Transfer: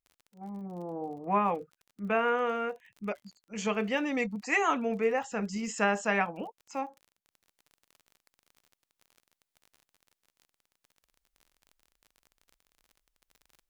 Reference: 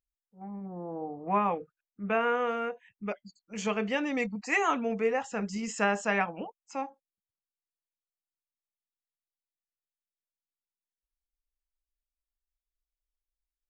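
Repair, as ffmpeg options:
ffmpeg -i in.wav -af "adeclick=threshold=4,asetnsamples=nb_out_samples=441:pad=0,asendcmd='7.31 volume volume -8dB',volume=0dB" out.wav

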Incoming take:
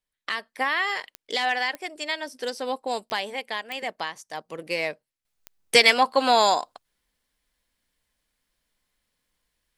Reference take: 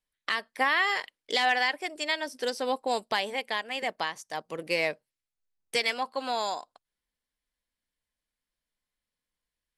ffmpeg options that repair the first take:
ffmpeg -i in.wav -af "adeclick=threshold=4,asetnsamples=nb_out_samples=441:pad=0,asendcmd='5.25 volume volume -11.5dB',volume=0dB" out.wav

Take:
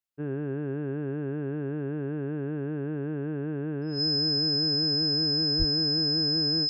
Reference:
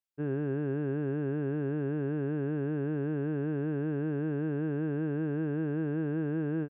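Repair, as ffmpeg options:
ffmpeg -i in.wav -filter_complex "[0:a]bandreject=frequency=5100:width=30,asplit=3[link_01][link_02][link_03];[link_01]afade=type=out:start_time=5.58:duration=0.02[link_04];[link_02]highpass=frequency=140:width=0.5412,highpass=frequency=140:width=1.3066,afade=type=in:start_time=5.58:duration=0.02,afade=type=out:start_time=5.7:duration=0.02[link_05];[link_03]afade=type=in:start_time=5.7:duration=0.02[link_06];[link_04][link_05][link_06]amix=inputs=3:normalize=0" out.wav

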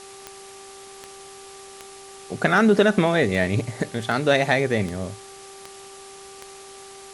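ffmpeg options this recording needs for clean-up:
ffmpeg -i in.wav -af "adeclick=threshold=4,bandreject=frequency=391.2:width_type=h:width=4,bandreject=frequency=782.4:width_type=h:width=4,bandreject=frequency=1173.6:width_type=h:width=4,afwtdn=0.0071" out.wav

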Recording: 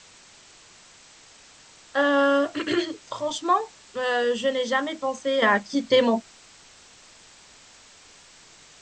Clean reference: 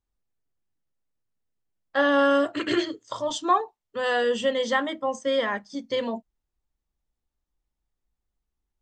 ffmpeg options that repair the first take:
ffmpeg -i in.wav -af "afwtdn=0.0045,asetnsamples=nb_out_samples=441:pad=0,asendcmd='5.42 volume volume -8.5dB',volume=0dB" out.wav

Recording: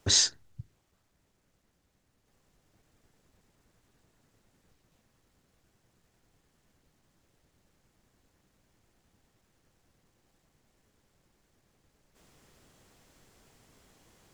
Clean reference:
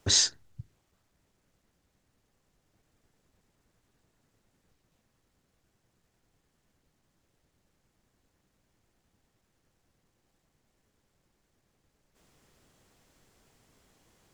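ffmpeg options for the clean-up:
ffmpeg -i in.wav -af "asetnsamples=nb_out_samples=441:pad=0,asendcmd='2.27 volume volume -3.5dB',volume=0dB" out.wav

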